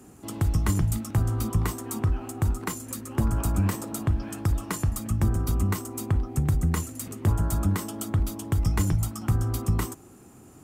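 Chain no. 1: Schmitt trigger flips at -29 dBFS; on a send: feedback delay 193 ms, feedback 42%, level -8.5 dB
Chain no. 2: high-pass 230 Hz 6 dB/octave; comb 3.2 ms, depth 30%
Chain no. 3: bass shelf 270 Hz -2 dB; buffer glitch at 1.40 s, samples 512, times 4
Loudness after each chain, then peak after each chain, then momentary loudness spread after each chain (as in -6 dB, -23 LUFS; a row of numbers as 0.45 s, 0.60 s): -28.5 LUFS, -33.0 LUFS, -29.0 LUFS; -17.5 dBFS, -14.5 dBFS, -13.5 dBFS; 4 LU, 4 LU, 5 LU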